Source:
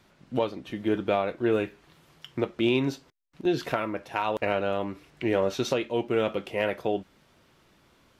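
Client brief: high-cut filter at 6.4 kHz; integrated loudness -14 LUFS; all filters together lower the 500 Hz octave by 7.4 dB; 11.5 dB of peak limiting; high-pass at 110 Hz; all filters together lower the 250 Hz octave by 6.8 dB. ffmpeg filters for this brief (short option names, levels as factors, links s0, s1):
-af "highpass=110,lowpass=6400,equalizer=f=250:t=o:g=-6,equalizer=f=500:t=o:g=-7.5,volume=14.1,alimiter=limit=1:level=0:latency=1"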